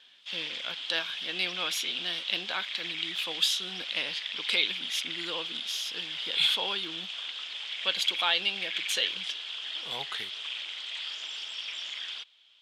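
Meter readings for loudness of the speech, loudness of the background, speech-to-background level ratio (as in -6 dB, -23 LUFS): -30.5 LUFS, -35.0 LUFS, 4.5 dB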